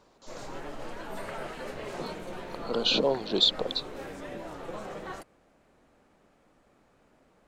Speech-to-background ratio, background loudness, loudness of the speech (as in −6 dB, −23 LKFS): 14.5 dB, −40.5 LKFS, −26.0 LKFS